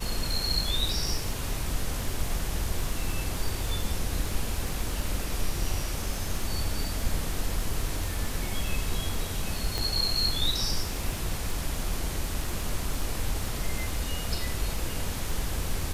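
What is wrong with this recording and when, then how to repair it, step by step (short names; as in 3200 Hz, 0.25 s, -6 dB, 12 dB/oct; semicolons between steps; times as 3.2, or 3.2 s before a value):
crackle 28/s -32 dBFS
9.78 pop -15 dBFS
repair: de-click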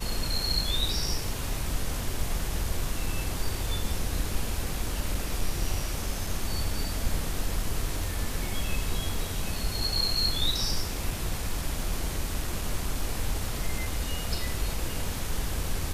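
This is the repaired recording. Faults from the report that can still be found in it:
9.78 pop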